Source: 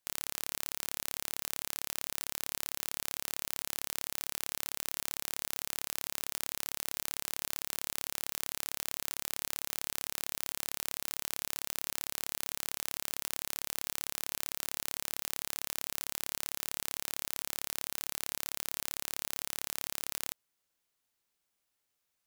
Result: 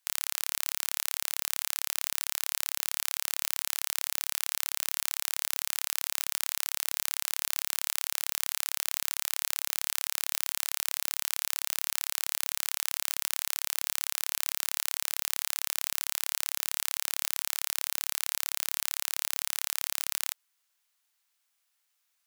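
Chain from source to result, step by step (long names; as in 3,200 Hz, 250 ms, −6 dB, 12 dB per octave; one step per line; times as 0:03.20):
high-pass filter 990 Hz 12 dB per octave
level +6 dB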